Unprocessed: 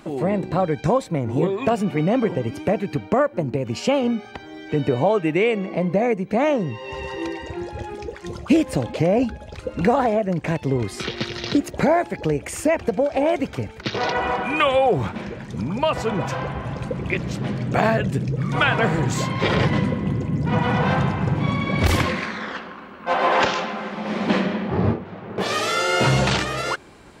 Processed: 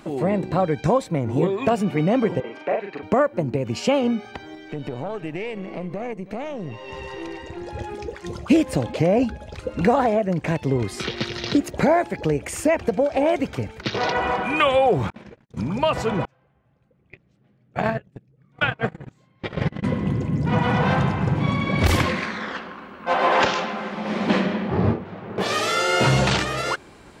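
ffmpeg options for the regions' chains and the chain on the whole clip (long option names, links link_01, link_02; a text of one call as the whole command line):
ffmpeg -i in.wav -filter_complex "[0:a]asettb=1/sr,asplit=3[link_01][link_02][link_03];[link_01]atrim=end=2.404[link_04];[link_02]atrim=start=2.4:end=3.03,asetpts=PTS-STARTPTS,afade=type=in:duration=0.004:curve=qsin,afade=type=out:start_time=0.626:duration=0.004:curve=qsin,highpass=540,lowpass=2500,asplit=2[link_05][link_06];[link_06]adelay=40,volume=-2.5dB[link_07];[link_05][link_07]amix=inputs=2:normalize=0,atrim=end_sample=27783[link_08];[link_03]atrim=start=3.026[link_09];[link_04][link_08]acrossfade=duration=0.004:curve1=hsin:curve2=qsin[link_10];[link_10][link_09]acrossfade=duration=0.004:curve1=qsin:curve2=hsin,asettb=1/sr,asplit=3[link_11][link_12][link_13];[link_11]atrim=end=4.554[link_14];[link_12]atrim=start=4.55:end=7.67,asetpts=PTS-STARTPTS,afade=type=in:duration=0.004:curve=qsin,afade=type=out:start_time=3.116:duration=0.004:curve=qsin,acompressor=threshold=-25dB:ratio=3:attack=3.2:release=140:knee=1:detection=peak,aeval=exprs='(tanh(7.94*val(0)+0.7)-tanh(0.7))/7.94':channel_layout=same,aecho=1:1:324:0.133,atrim=end_sample=137592[link_15];[link_13]atrim=start=7.666[link_16];[link_14][link_15]acrossfade=duration=0.004:curve1=hsin:curve2=qsin[link_17];[link_17][link_16]acrossfade=duration=0.004:curve1=qsin:curve2=hsin,asettb=1/sr,asplit=3[link_18][link_19][link_20];[link_18]atrim=end=15.104[link_21];[link_19]atrim=start=15.1:end=15.57,asetpts=PTS-STARTPTS,afade=type=in:duration=0.004:curve=qsin,afade=type=out:start_time=0.466:duration=0.004:curve=qsin,agate=range=-57dB:threshold=-31dB:ratio=16:release=100:detection=peak,acompressor=threshold=-37dB:ratio=6:attack=3.2:release=140:knee=1:detection=peak[link_22];[link_20]atrim=start=15.566[link_23];[link_21][link_22]acrossfade=duration=0.004:curve1=hsin:curve2=qsin[link_24];[link_24][link_23]acrossfade=duration=0.004:curve1=qsin:curve2=hsin,asettb=1/sr,asplit=3[link_25][link_26][link_27];[link_25]atrim=end=16.254[link_28];[link_26]atrim=start=16.25:end=19.84,asetpts=PTS-STARTPTS,afade=type=in:duration=0.004:curve=qsin,afade=type=out:start_time=3.586:duration=0.004:curve=qsin,bandreject=frequency=990:width=10,agate=range=-36dB:threshold=-18dB:ratio=16:release=100:detection=peak,bass=frequency=250:gain=1,treble=frequency=4000:gain=-6[link_29];[link_27]atrim=start=19.836[link_30];[link_28][link_29]acrossfade=duration=0.004:curve1=hsin:curve2=qsin[link_31];[link_31][link_30]acrossfade=duration=0.004:curve1=qsin:curve2=hsin" out.wav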